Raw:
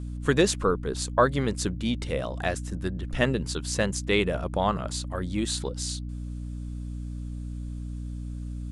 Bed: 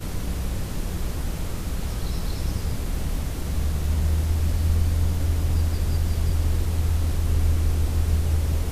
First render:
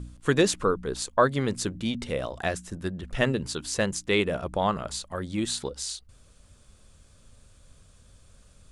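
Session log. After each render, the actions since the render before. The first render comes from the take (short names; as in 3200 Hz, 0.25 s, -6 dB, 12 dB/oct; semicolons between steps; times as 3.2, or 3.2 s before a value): de-hum 60 Hz, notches 5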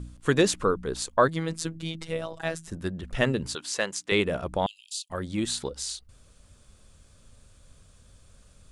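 1.28–2.68 robotiser 163 Hz; 3.55–4.12 weighting filter A; 4.66–5.1 steep high-pass 2600 Hz 96 dB/oct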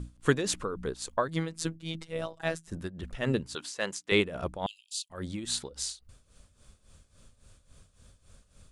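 tremolo 3.6 Hz, depth 77%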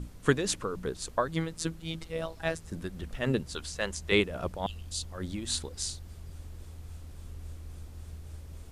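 add bed -22 dB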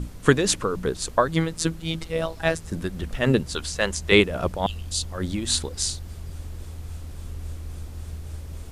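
gain +8.5 dB; limiter -3 dBFS, peak gain reduction 2 dB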